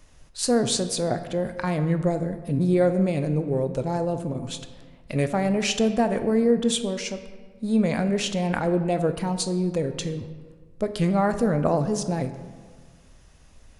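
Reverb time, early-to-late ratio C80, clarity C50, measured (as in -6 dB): 1.6 s, 12.0 dB, 10.5 dB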